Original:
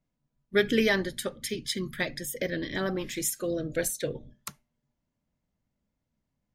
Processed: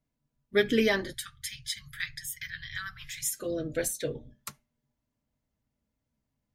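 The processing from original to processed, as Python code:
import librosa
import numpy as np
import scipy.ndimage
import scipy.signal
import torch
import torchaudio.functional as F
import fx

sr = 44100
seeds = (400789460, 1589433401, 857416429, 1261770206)

y = fx.ellip_bandstop(x, sr, low_hz=120.0, high_hz=1400.0, order=3, stop_db=50, at=(1.13, 3.32))
y = fx.notch_comb(y, sr, f0_hz=180.0)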